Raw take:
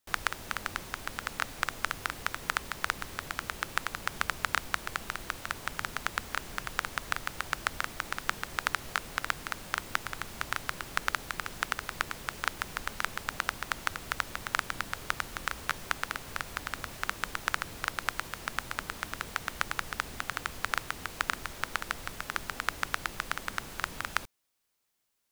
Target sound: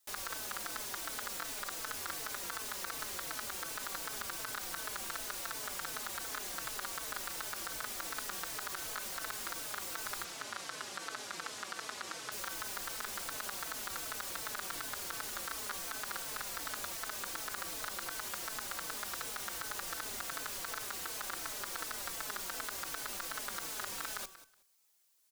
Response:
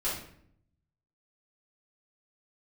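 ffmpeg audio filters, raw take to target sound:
-filter_complex "[0:a]bass=f=250:g=-13,treble=f=4k:g=8,bandreject=f=381.5:t=h:w=4,bandreject=f=763:t=h:w=4,bandreject=f=1.1445k:t=h:w=4,bandreject=f=1.526k:t=h:w=4,alimiter=limit=-13dB:level=0:latency=1:release=33,asoftclip=type=hard:threshold=-25dB,asettb=1/sr,asplit=3[a][b][c];[a]atrim=end=10.244[d];[b]atrim=start=10.24:end=12.32,asetpts=PTS-STARTPTS,afade=t=in:d=0.004:c=qsin,afade=t=out:st=2.076:d=0.004:c=qsin,highpass=120,lowpass=7.2k[e];[c]atrim=start=12.316[f];[d][e]acrossfade=d=0.004:c1=hsin:c2=qsin[g];[g][f]acrossfade=d=0.004:c1=qsin:c2=hsin,aecho=1:1:185|370:0.178|0.0338,asplit=2[h][i];[i]adelay=4.1,afreqshift=-2.7[j];[h][j]amix=inputs=2:normalize=1,volume=3dB"

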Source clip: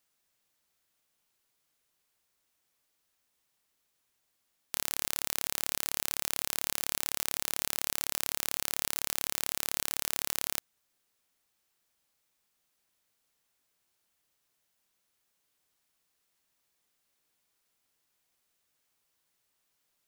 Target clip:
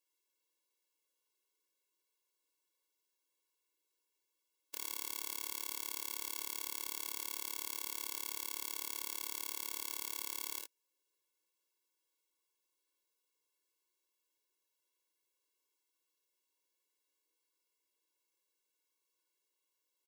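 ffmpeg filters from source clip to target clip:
-filter_complex "[0:a]asuperstop=centerf=1600:order=4:qfactor=7.8,asplit=2[a][b];[b]aecho=0:1:55|74:0.596|0.355[c];[a][c]amix=inputs=2:normalize=0,afftfilt=real='re*eq(mod(floor(b*sr/1024/290),2),1)':imag='im*eq(mod(floor(b*sr/1024/290),2),1)':win_size=1024:overlap=0.75,volume=-6dB"

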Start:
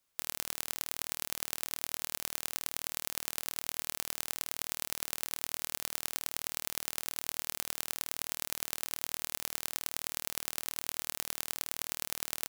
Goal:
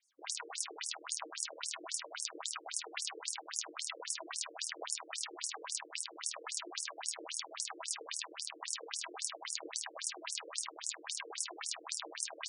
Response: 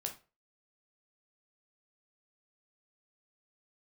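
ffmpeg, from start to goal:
-filter_complex "[0:a]acompressor=threshold=-37dB:ratio=10,aphaser=in_gain=1:out_gain=1:delay=3.1:decay=0.66:speed=0.83:type=triangular,aeval=exprs='0.355*(cos(1*acos(clip(val(0)/0.355,-1,1)))-cos(1*PI/2))+0.00316*(cos(5*acos(clip(val(0)/0.355,-1,1)))-cos(5*PI/2))+0.126*(cos(6*acos(clip(val(0)/0.355,-1,1)))-cos(6*PI/2))+0.00794*(cos(7*acos(clip(val(0)/0.355,-1,1)))-cos(7*PI/2))':c=same[a];[1:a]atrim=start_sample=2205,asetrate=74970,aresample=44100[b];[a][b]afir=irnorm=-1:irlink=0,afftfilt=real='re*between(b*sr/1024,370*pow(7600/370,0.5+0.5*sin(2*PI*3.7*pts/sr))/1.41,370*pow(7600/370,0.5+0.5*sin(2*PI*3.7*pts/sr))*1.41)':imag='im*between(b*sr/1024,370*pow(7600/370,0.5+0.5*sin(2*PI*3.7*pts/sr))/1.41,370*pow(7600/370,0.5+0.5*sin(2*PI*3.7*pts/sr))*1.41)':win_size=1024:overlap=0.75,volume=12.5dB"

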